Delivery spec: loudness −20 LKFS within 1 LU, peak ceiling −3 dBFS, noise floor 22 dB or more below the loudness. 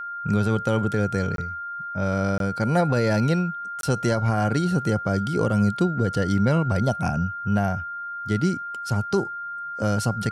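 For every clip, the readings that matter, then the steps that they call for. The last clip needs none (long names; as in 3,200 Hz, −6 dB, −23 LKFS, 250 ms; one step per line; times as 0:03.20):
number of dropouts 3; longest dropout 22 ms; interfering tone 1,400 Hz; level of the tone −30 dBFS; integrated loudness −24.0 LKFS; sample peak −10.5 dBFS; target loudness −20.0 LKFS
→ repair the gap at 0:01.36/0:02.38/0:03.81, 22 ms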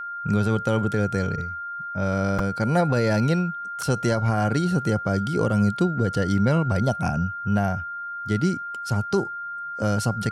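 number of dropouts 0; interfering tone 1,400 Hz; level of the tone −30 dBFS
→ notch filter 1,400 Hz, Q 30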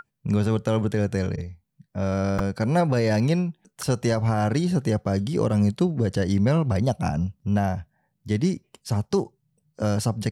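interfering tone none found; integrated loudness −24.5 LKFS; sample peak −11.0 dBFS; target loudness −20.0 LKFS
→ level +4.5 dB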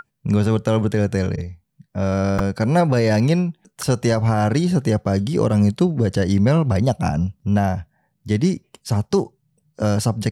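integrated loudness −20.0 LKFS; sample peak −6.5 dBFS; background noise floor −71 dBFS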